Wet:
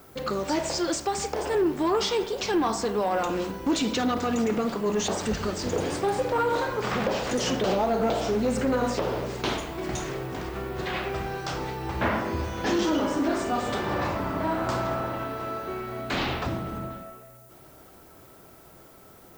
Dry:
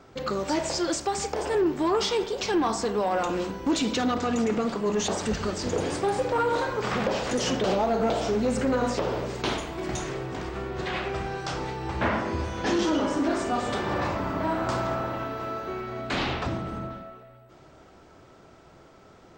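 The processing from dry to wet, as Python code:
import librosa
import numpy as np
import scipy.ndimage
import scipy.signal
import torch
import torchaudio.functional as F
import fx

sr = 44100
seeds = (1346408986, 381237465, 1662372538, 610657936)

y = fx.dmg_noise_colour(x, sr, seeds[0], colour='violet', level_db=-56.0)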